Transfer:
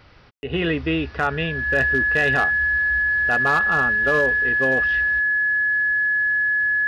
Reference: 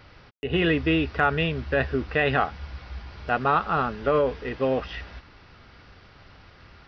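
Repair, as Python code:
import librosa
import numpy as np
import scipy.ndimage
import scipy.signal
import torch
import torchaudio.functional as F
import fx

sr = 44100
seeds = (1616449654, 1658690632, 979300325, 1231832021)

y = fx.fix_declip(x, sr, threshold_db=-12.0)
y = fx.notch(y, sr, hz=1700.0, q=30.0)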